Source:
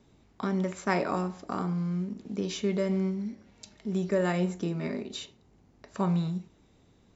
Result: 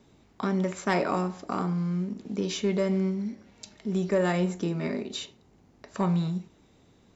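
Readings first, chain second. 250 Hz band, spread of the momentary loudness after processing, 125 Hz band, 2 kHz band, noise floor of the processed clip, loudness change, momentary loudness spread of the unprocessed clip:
+2.0 dB, 11 LU, +1.5 dB, +2.0 dB, −60 dBFS, +2.0 dB, 11 LU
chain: soft clipping −17.5 dBFS, distortion −22 dB
low-shelf EQ 94 Hz −6 dB
level +3.5 dB

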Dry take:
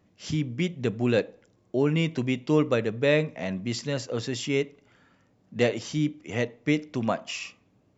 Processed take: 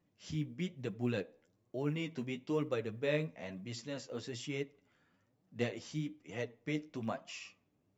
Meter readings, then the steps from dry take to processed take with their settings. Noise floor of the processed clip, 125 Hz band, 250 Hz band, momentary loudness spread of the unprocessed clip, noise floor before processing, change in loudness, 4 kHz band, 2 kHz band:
−77 dBFS, −11.5 dB, −12.0 dB, 9 LU, −65 dBFS, −12.0 dB, −12.0 dB, −12.0 dB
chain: flanger 1.1 Hz, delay 5.5 ms, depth 8.4 ms, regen +25%
floating-point word with a short mantissa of 6 bits
level −8.5 dB

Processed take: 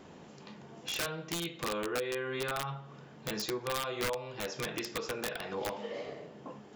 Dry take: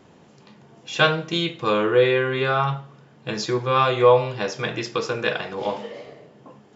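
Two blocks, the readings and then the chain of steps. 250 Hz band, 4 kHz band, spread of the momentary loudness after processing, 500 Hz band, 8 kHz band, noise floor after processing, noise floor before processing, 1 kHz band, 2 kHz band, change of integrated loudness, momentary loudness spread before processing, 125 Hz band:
−12.5 dB, −10.5 dB, 14 LU, −16.0 dB, can't be measured, −53 dBFS, −52 dBFS, −16.0 dB, −13.0 dB, −15.0 dB, 15 LU, −16.0 dB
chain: parametric band 120 Hz −9.5 dB 0.24 octaves
downward compressor 5 to 1, threshold −34 dBFS, peak gain reduction 21 dB
wrap-around overflow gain 26.5 dB

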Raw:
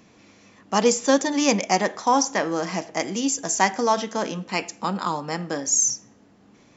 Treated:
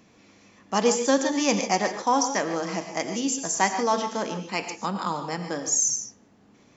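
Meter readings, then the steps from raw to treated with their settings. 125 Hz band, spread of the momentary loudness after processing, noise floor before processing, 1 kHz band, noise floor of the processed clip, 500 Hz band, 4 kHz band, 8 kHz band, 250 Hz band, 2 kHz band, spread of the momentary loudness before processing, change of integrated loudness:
−2.5 dB, 9 LU, −55 dBFS, −2.5 dB, −57 dBFS, −2.0 dB, −2.5 dB, can't be measured, −2.5 dB, −2.5 dB, 9 LU, −2.5 dB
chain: reverb whose tail is shaped and stops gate 170 ms rising, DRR 7.5 dB
level −3 dB

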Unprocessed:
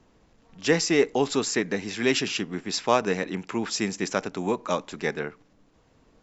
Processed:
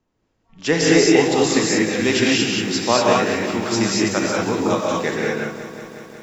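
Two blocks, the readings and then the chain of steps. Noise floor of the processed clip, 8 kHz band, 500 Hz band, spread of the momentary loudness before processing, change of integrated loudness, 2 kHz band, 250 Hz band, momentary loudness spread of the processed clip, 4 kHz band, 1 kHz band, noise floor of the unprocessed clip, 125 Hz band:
−69 dBFS, can't be measured, +7.5 dB, 8 LU, +8.0 dB, +8.0 dB, +9.5 dB, 13 LU, +8.5 dB, +7.5 dB, −62 dBFS, +9.0 dB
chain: noise reduction from a noise print of the clip's start 16 dB
reverb whose tail is shaped and stops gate 260 ms rising, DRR −3.5 dB
feedback echo at a low word length 182 ms, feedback 80%, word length 8 bits, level −13.5 dB
level +2.5 dB

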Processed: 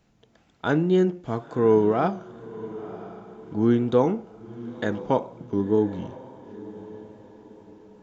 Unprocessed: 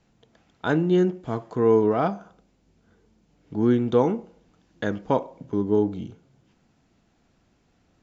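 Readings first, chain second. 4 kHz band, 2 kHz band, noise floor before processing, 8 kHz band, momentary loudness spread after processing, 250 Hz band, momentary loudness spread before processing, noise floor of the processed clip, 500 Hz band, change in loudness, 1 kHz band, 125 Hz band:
0.0 dB, 0.0 dB, −65 dBFS, can't be measured, 21 LU, 0.0 dB, 13 LU, −62 dBFS, 0.0 dB, 0.0 dB, +0.5 dB, 0.0 dB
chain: tape wow and flutter 42 cents
feedback delay with all-pass diffusion 988 ms, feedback 42%, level −16 dB

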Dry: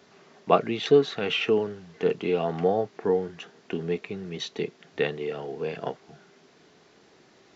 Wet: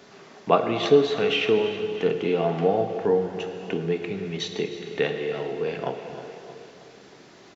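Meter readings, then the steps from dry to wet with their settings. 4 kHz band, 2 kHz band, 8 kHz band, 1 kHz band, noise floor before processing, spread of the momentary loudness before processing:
+2.5 dB, +2.5 dB, can't be measured, +2.0 dB, −58 dBFS, 14 LU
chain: repeating echo 314 ms, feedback 52%, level −16 dB
dense smooth reverb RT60 2 s, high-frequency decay 1×, DRR 6 dB
in parallel at +0.5 dB: downward compressor, threshold −39 dBFS, peak gain reduction 24 dB

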